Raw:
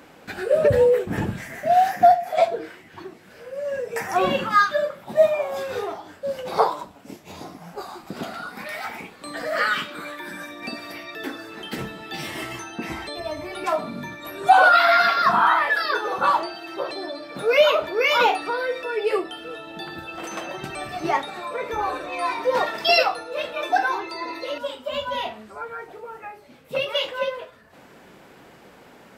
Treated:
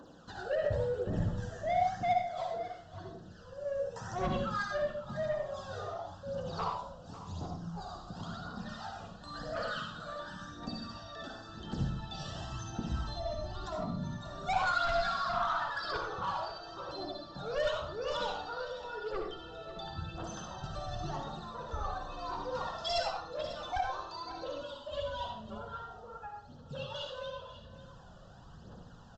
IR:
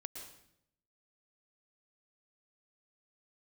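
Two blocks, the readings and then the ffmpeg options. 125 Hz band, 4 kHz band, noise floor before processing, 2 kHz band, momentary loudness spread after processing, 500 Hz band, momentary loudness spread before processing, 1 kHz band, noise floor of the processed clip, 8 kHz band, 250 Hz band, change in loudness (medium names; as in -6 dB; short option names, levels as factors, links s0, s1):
-1.5 dB, -13.0 dB, -49 dBFS, -17.0 dB, 15 LU, -14.0 dB, 19 LU, -14.5 dB, -53 dBFS, -10.5 dB, -9.0 dB, -15.0 dB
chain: -filter_complex "[0:a]asuperstop=centerf=2200:order=4:qfactor=1.5,asplit=2[s0][s1];[s1]acompressor=threshold=0.0251:ratio=6,volume=0.891[s2];[s0][s2]amix=inputs=2:normalize=0,aphaser=in_gain=1:out_gain=1:delay=1.8:decay=0.62:speed=0.94:type=triangular,aresample=16000,asoftclip=type=tanh:threshold=0.251,aresample=44100,aecho=1:1:546:0.178[s3];[1:a]atrim=start_sample=2205,asetrate=83790,aresample=44100[s4];[s3][s4]afir=irnorm=-1:irlink=0,asubboost=boost=6.5:cutoff=120,volume=0.531"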